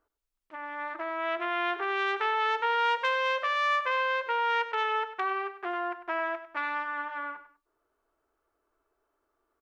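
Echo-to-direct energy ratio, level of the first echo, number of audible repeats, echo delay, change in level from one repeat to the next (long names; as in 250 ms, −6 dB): −12.5 dB, −13.0 dB, 2, 99 ms, −10.5 dB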